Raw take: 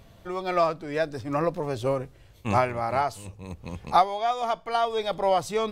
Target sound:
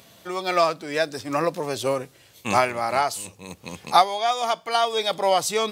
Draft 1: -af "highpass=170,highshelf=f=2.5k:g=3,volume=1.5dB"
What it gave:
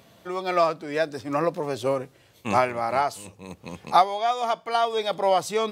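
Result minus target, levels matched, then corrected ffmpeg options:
4000 Hz band -5.0 dB
-af "highpass=170,highshelf=f=2.5k:g=12.5,volume=1.5dB"

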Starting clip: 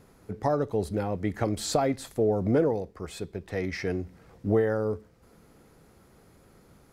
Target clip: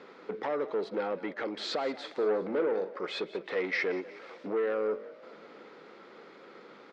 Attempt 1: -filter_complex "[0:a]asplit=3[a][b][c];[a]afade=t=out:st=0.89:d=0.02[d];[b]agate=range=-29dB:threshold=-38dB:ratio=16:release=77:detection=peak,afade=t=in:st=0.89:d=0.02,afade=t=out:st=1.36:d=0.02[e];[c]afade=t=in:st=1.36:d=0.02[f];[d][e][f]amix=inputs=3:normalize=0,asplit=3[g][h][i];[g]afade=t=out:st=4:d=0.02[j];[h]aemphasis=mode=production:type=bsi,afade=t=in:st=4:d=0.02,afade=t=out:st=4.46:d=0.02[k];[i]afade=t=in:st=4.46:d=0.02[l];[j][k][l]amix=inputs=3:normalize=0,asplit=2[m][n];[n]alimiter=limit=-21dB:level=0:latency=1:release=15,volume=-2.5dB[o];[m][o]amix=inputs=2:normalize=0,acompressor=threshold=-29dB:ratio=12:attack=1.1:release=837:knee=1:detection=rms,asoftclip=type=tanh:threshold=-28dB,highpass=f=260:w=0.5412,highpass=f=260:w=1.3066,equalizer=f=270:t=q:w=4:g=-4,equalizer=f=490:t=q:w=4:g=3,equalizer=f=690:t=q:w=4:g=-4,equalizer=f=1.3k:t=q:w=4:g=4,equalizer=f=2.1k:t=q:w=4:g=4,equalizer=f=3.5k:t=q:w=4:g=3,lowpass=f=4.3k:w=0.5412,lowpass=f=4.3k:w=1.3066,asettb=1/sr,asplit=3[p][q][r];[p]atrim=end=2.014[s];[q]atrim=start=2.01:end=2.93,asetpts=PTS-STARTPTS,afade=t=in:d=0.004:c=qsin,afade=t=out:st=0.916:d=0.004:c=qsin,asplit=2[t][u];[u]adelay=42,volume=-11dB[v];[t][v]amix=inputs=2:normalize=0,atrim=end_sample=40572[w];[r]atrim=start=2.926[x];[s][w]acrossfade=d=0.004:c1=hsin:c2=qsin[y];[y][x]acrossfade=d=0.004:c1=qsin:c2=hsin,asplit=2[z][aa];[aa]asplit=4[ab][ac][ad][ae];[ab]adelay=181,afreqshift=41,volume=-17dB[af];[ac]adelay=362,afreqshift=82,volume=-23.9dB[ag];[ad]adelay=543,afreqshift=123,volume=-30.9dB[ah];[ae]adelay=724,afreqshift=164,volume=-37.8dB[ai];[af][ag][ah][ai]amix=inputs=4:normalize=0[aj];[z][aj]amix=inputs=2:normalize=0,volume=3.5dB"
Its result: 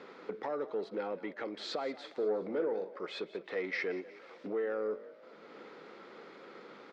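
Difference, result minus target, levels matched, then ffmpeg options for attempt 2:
compressor: peak gain reduction +6.5 dB
-filter_complex "[0:a]asplit=3[a][b][c];[a]afade=t=out:st=0.89:d=0.02[d];[b]agate=range=-29dB:threshold=-38dB:ratio=16:release=77:detection=peak,afade=t=in:st=0.89:d=0.02,afade=t=out:st=1.36:d=0.02[e];[c]afade=t=in:st=1.36:d=0.02[f];[d][e][f]amix=inputs=3:normalize=0,asplit=3[g][h][i];[g]afade=t=out:st=4:d=0.02[j];[h]aemphasis=mode=production:type=bsi,afade=t=in:st=4:d=0.02,afade=t=out:st=4.46:d=0.02[k];[i]afade=t=in:st=4.46:d=0.02[l];[j][k][l]amix=inputs=3:normalize=0,asplit=2[m][n];[n]alimiter=limit=-21dB:level=0:latency=1:release=15,volume=-2.5dB[o];[m][o]amix=inputs=2:normalize=0,acompressor=threshold=-22dB:ratio=12:attack=1.1:release=837:knee=1:detection=rms,asoftclip=type=tanh:threshold=-28dB,highpass=f=260:w=0.5412,highpass=f=260:w=1.3066,equalizer=f=270:t=q:w=4:g=-4,equalizer=f=490:t=q:w=4:g=3,equalizer=f=690:t=q:w=4:g=-4,equalizer=f=1.3k:t=q:w=4:g=4,equalizer=f=2.1k:t=q:w=4:g=4,equalizer=f=3.5k:t=q:w=4:g=3,lowpass=f=4.3k:w=0.5412,lowpass=f=4.3k:w=1.3066,asettb=1/sr,asplit=3[p][q][r];[p]atrim=end=2.014[s];[q]atrim=start=2.01:end=2.93,asetpts=PTS-STARTPTS,afade=t=in:d=0.004:c=qsin,afade=t=out:st=0.916:d=0.004:c=qsin,asplit=2[t][u];[u]adelay=42,volume=-11dB[v];[t][v]amix=inputs=2:normalize=0,atrim=end_sample=40572[w];[r]atrim=start=2.926[x];[s][w]acrossfade=d=0.004:c1=hsin:c2=qsin[y];[y][x]acrossfade=d=0.004:c1=qsin:c2=hsin,asplit=2[z][aa];[aa]asplit=4[ab][ac][ad][ae];[ab]adelay=181,afreqshift=41,volume=-17dB[af];[ac]adelay=362,afreqshift=82,volume=-23.9dB[ag];[ad]adelay=543,afreqshift=123,volume=-30.9dB[ah];[ae]adelay=724,afreqshift=164,volume=-37.8dB[ai];[af][ag][ah][ai]amix=inputs=4:normalize=0[aj];[z][aj]amix=inputs=2:normalize=0,volume=3.5dB"

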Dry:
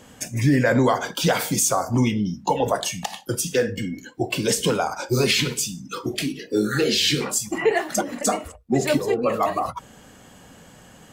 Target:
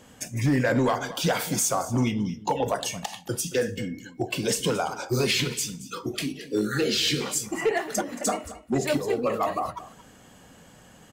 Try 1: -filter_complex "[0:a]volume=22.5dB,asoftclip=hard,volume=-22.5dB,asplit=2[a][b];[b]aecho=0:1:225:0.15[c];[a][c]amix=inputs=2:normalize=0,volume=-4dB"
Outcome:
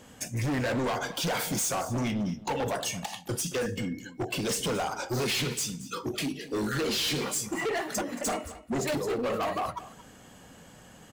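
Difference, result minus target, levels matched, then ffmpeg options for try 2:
overloaded stage: distortion +16 dB
-filter_complex "[0:a]volume=12.5dB,asoftclip=hard,volume=-12.5dB,asplit=2[a][b];[b]aecho=0:1:225:0.15[c];[a][c]amix=inputs=2:normalize=0,volume=-4dB"

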